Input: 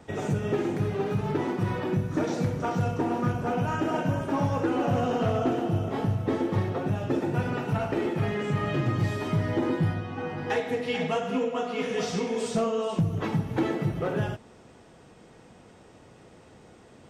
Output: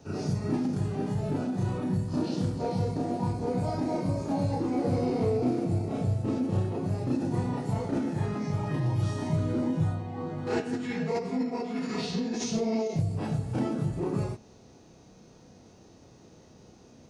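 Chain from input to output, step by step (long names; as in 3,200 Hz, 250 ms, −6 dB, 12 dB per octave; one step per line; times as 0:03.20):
drawn EQ curve 980 Hz 0 dB, 2,200 Hz −7 dB, 9,000 Hz +7 dB
backwards echo 32 ms −3.5 dB
formants moved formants −5 semitones
level −3 dB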